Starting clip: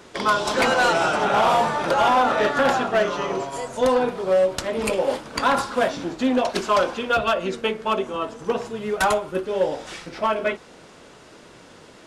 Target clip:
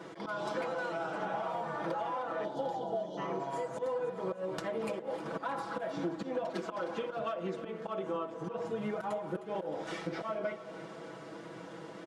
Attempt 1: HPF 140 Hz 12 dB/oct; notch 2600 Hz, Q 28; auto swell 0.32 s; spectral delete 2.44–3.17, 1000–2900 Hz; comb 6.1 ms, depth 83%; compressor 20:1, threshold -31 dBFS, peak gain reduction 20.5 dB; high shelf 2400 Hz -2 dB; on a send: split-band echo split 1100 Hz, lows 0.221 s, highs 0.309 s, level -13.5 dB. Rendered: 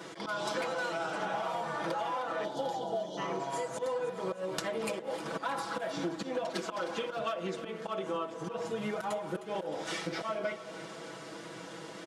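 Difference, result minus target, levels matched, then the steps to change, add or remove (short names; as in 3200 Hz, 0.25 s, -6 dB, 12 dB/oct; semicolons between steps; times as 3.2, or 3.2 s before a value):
4000 Hz band +6.5 dB
change: high shelf 2400 Hz -14 dB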